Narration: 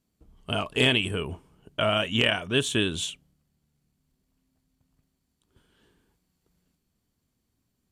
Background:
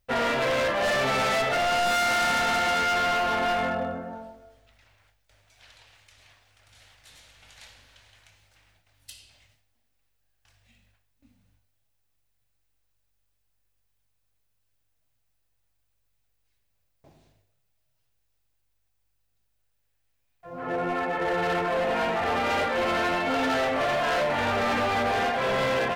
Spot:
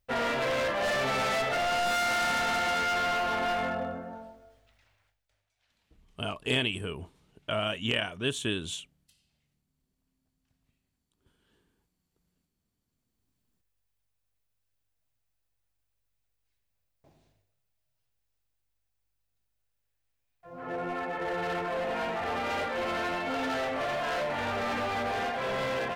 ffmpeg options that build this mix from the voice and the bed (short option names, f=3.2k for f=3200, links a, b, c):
-filter_complex "[0:a]adelay=5700,volume=-6dB[a];[1:a]volume=11dB,afade=t=out:st=4.54:d=0.97:silence=0.141254,afade=t=in:st=12.85:d=0.56:silence=0.177828[b];[a][b]amix=inputs=2:normalize=0"